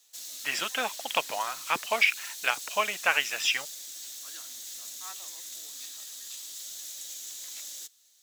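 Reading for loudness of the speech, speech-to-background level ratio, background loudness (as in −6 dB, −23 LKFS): −28.0 LKFS, 10.0 dB, −38.0 LKFS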